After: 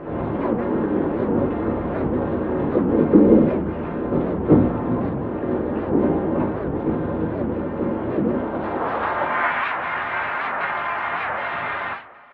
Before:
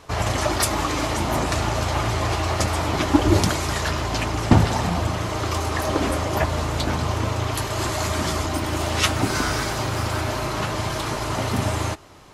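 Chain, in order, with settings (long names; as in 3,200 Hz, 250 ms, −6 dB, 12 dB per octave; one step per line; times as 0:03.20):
loose part that buzzes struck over −22 dBFS, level −20 dBFS
low-pass filter 2,000 Hz 24 dB per octave
low-shelf EQ 67 Hz +11 dB
mains-hum notches 50/100/150/200/250/300/350/400 Hz
comb filter 5.7 ms, depth 36%
on a send: backwards echo 378 ms −8 dB
on the sum: band-pass filter sweep 320 Hz → 1,400 Hz, 0:08.17–0:09.55
pitch-shifted copies added −7 semitones −2 dB, +5 semitones −5 dB, +7 semitones −3 dB
coupled-rooms reverb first 0.52 s, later 2 s, from −21 dB, DRR 1 dB
wow of a warped record 78 rpm, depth 250 cents
level +2 dB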